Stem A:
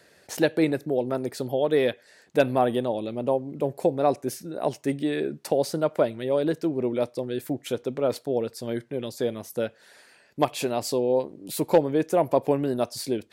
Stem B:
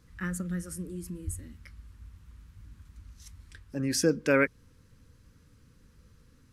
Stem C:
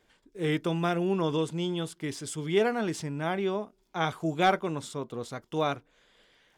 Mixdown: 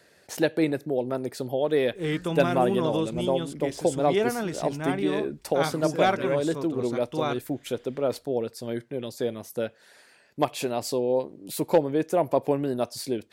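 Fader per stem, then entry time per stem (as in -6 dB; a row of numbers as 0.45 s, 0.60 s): -1.5 dB, -11.5 dB, 0.0 dB; 0.00 s, 1.90 s, 1.60 s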